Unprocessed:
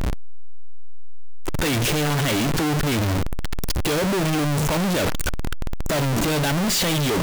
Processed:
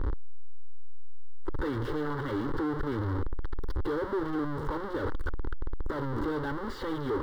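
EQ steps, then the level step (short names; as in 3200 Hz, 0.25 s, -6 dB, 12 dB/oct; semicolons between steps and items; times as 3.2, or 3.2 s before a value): air absorption 440 m; fixed phaser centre 670 Hz, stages 6; -4.5 dB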